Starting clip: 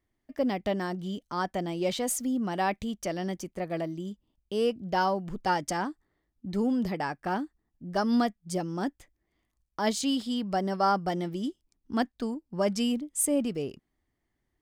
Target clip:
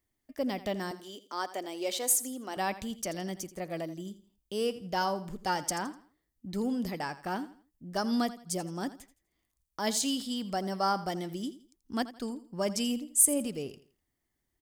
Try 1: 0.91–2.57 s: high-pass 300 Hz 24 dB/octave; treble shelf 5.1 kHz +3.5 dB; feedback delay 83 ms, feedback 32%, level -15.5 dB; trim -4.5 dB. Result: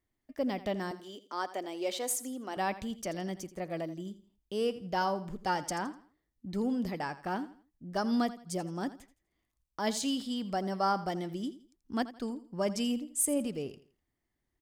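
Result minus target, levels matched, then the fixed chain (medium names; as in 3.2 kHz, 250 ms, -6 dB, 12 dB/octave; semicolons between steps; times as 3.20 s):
8 kHz band -5.0 dB
0.91–2.57 s: high-pass 300 Hz 24 dB/octave; treble shelf 5.1 kHz +13 dB; feedback delay 83 ms, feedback 32%, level -15.5 dB; trim -4.5 dB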